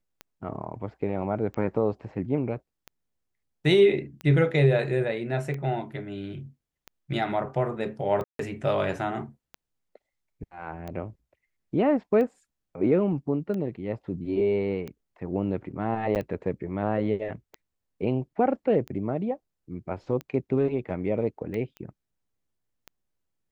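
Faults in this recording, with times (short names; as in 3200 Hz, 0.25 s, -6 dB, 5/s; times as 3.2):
tick 45 rpm -23 dBFS
8.24–8.39 gap 0.153 s
16.15–16.16 gap 9.1 ms
21.77 pop -28 dBFS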